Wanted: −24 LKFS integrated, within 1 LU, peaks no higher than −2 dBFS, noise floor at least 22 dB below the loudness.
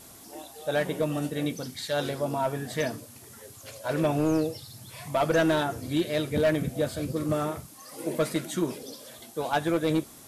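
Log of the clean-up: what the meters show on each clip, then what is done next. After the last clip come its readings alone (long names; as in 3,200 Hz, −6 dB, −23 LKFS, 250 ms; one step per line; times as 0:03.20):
share of clipped samples 1.0%; peaks flattened at −18.0 dBFS; background noise floor −49 dBFS; target noise floor −51 dBFS; integrated loudness −28.5 LKFS; sample peak −18.0 dBFS; target loudness −24.0 LKFS
→ clipped peaks rebuilt −18 dBFS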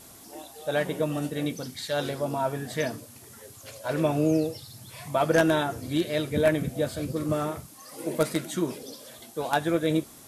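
share of clipped samples 0.0%; background noise floor −49 dBFS; target noise floor −50 dBFS
→ noise reduction from a noise print 6 dB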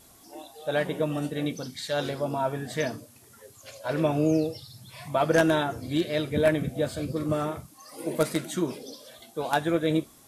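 background noise floor −55 dBFS; integrated loudness −28.0 LKFS; sample peak −9.0 dBFS; target loudness −24.0 LKFS
→ level +4 dB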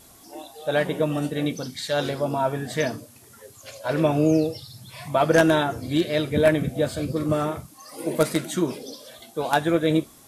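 integrated loudness −24.0 LKFS; sample peak −5.0 dBFS; background noise floor −51 dBFS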